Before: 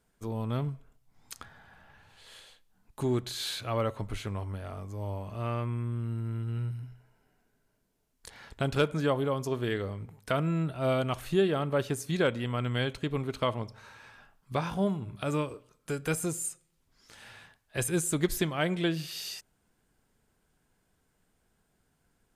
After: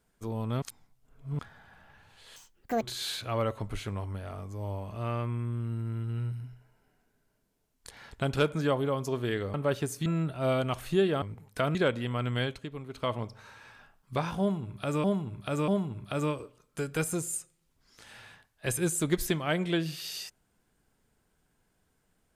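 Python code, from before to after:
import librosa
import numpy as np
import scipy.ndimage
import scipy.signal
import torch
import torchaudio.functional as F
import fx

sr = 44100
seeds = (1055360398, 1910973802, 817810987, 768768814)

y = fx.edit(x, sr, fx.reverse_span(start_s=0.62, length_s=0.77),
    fx.speed_span(start_s=2.36, length_s=0.85, speed=1.85),
    fx.swap(start_s=9.93, length_s=0.53, other_s=11.62, other_length_s=0.52),
    fx.fade_down_up(start_s=12.79, length_s=0.77, db=-9.0, fade_s=0.29),
    fx.repeat(start_s=14.79, length_s=0.64, count=3), tone=tone)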